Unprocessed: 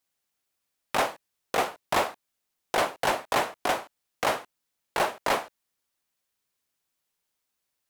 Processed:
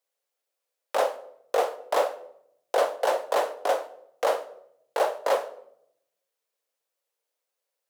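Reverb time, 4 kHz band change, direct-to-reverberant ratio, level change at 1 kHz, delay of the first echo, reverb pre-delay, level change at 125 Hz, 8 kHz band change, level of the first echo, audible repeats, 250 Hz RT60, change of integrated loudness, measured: 0.75 s, −5.0 dB, 11.0 dB, −0.5 dB, no echo audible, 6 ms, below −20 dB, −4.0 dB, no echo audible, no echo audible, 1.1 s, +1.0 dB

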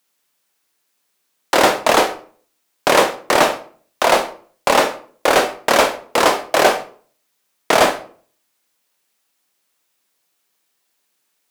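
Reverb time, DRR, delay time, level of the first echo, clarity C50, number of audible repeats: 0.45 s, 7.5 dB, no echo audible, no echo audible, 13.0 dB, no echo audible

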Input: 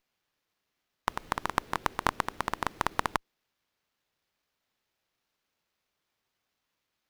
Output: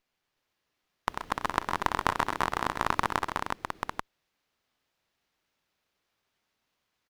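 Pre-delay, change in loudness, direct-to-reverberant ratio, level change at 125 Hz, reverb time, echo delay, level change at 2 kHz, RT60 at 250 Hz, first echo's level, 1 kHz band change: no reverb audible, +2.0 dB, no reverb audible, +3.0 dB, no reverb audible, 64 ms, +2.5 dB, no reverb audible, −19.5 dB, +3.0 dB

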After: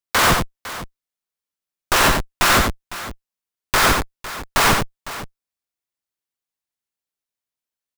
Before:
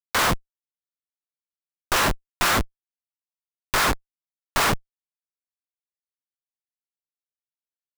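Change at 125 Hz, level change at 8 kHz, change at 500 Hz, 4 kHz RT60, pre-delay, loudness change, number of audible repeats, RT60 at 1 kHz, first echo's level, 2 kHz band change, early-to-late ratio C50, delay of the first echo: +6.0 dB, +6.0 dB, +6.0 dB, no reverb audible, no reverb audible, +6.0 dB, 2, no reverb audible, −4.0 dB, +6.0 dB, no reverb audible, 89 ms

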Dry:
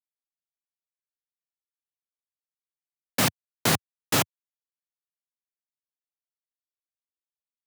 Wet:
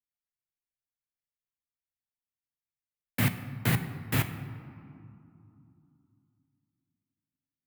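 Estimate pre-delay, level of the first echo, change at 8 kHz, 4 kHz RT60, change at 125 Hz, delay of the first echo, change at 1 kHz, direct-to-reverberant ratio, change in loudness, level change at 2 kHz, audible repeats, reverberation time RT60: 7 ms, no echo audible, −12.5 dB, 1.2 s, +4.5 dB, no echo audible, −9.0 dB, 7.5 dB, −5.0 dB, −4.0 dB, no echo audible, 2.7 s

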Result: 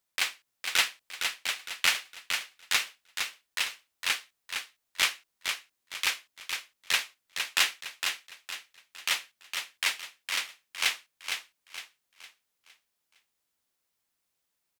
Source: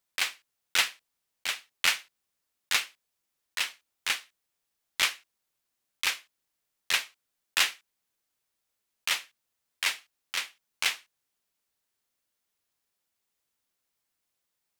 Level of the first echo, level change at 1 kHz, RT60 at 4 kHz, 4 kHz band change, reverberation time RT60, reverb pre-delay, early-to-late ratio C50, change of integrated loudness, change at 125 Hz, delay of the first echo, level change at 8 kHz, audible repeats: −6.0 dB, +1.0 dB, no reverb audible, +1.0 dB, no reverb audible, no reverb audible, no reverb audible, −1.0 dB, can't be measured, 460 ms, +1.0 dB, 4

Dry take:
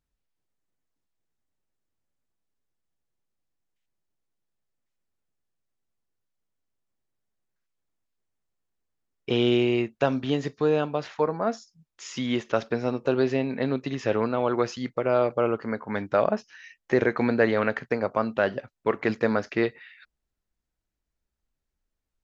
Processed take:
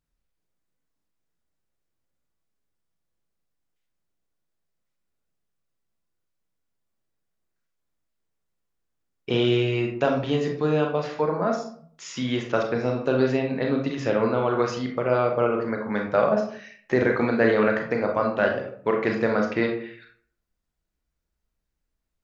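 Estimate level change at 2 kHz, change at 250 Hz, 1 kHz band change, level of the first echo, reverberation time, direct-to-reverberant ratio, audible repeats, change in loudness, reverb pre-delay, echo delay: +2.5 dB, +1.5 dB, +2.5 dB, no echo audible, 0.55 s, 1.5 dB, no echo audible, +2.0 dB, 30 ms, no echo audible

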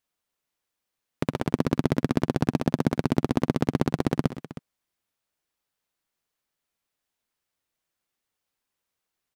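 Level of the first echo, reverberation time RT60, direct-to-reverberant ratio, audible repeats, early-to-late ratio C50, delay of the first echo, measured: −18.0 dB, no reverb audible, no reverb audible, 3, no reverb audible, 71 ms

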